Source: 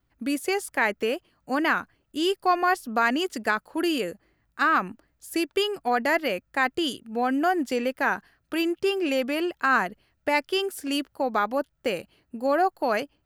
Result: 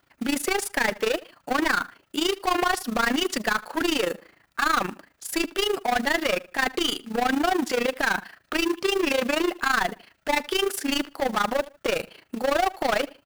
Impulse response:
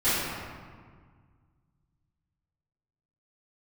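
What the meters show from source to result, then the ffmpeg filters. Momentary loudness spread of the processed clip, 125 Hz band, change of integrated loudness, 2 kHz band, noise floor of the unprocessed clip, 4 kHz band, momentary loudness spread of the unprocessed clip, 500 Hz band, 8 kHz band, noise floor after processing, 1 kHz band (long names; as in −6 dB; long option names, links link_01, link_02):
6 LU, +3.5 dB, +0.5 dB, +1.0 dB, −72 dBFS, +4.5 dB, 8 LU, +0.5 dB, +8.0 dB, −66 dBFS, −0.5 dB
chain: -filter_complex "[0:a]asplit=2[link_01][link_02];[link_02]highpass=frequency=720:poles=1,volume=29dB,asoftclip=type=tanh:threshold=-9dB[link_03];[link_01][link_03]amix=inputs=2:normalize=0,lowpass=frequency=5200:poles=1,volume=-6dB,tremolo=f=27:d=0.824,asplit=2[link_04][link_05];[link_05]adelay=77,lowpass=frequency=4400:poles=1,volume=-19.5dB,asplit=2[link_06][link_07];[link_07]adelay=77,lowpass=frequency=4400:poles=1,volume=0.29[link_08];[link_06][link_08]amix=inputs=2:normalize=0[link_09];[link_04][link_09]amix=inputs=2:normalize=0,acrusher=bits=4:mode=log:mix=0:aa=0.000001,volume=-4dB"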